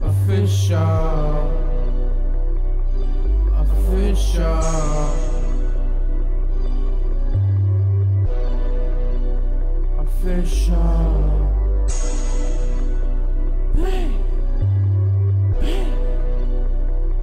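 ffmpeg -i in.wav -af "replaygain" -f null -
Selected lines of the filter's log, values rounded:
track_gain = +8.1 dB
track_peak = 0.228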